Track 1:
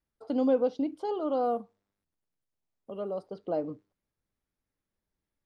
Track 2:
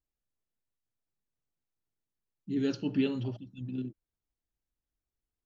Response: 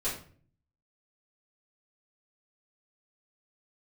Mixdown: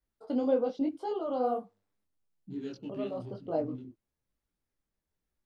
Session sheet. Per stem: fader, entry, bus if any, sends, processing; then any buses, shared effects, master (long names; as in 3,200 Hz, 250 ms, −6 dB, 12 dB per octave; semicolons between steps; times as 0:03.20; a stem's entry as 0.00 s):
+2.0 dB, 0.00 s, no send, no processing
+2.5 dB, 0.00 s, no send, adaptive Wiener filter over 25 samples; downward compressor 2 to 1, threshold −43 dBFS, peak gain reduction 11 dB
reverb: not used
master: micro pitch shift up and down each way 39 cents